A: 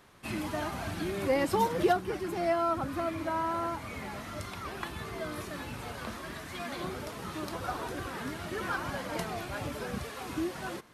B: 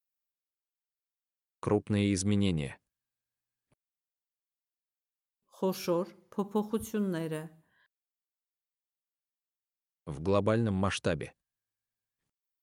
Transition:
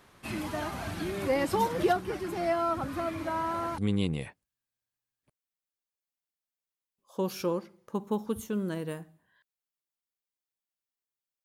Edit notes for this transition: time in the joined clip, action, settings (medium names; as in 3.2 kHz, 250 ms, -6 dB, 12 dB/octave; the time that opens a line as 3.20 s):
A
3.78 s: go over to B from 2.22 s